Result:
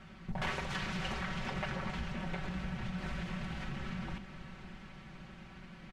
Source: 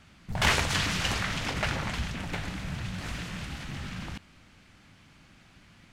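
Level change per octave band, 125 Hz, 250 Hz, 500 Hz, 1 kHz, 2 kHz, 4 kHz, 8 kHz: -6.5 dB, -3.0 dB, -6.0 dB, -7.0 dB, -9.5 dB, -12.5 dB, -18.0 dB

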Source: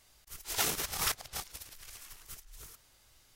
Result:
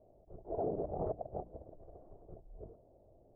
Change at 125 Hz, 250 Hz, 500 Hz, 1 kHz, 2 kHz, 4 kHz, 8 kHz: +3.0 dB, +5.5 dB, +9.5 dB, -3.0 dB, under -35 dB, under -40 dB, under -40 dB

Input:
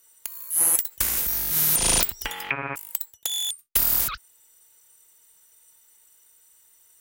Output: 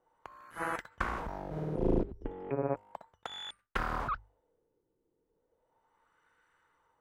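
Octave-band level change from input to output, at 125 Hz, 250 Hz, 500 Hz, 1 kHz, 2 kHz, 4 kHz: +0.5 dB, +3.5 dB, +3.5 dB, -1.0 dB, -8.0 dB, -18.0 dB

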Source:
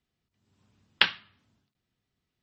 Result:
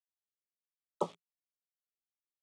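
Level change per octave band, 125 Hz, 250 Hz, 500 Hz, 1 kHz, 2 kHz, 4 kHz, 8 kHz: -0.5 dB, +2.0 dB, +7.5 dB, -4.0 dB, under -40 dB, -33.5 dB, no reading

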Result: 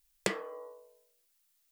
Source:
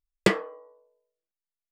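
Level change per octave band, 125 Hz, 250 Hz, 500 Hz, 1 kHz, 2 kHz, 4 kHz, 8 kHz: -14.0 dB, -14.0 dB, -10.0 dB, -9.0 dB, -9.5 dB, -8.5 dB, -1.5 dB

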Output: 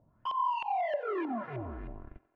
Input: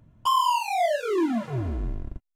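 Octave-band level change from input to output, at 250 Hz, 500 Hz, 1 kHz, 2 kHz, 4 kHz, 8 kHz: -11.0 dB, -8.5 dB, -8.0 dB, -8.0 dB, -16.5 dB, under -35 dB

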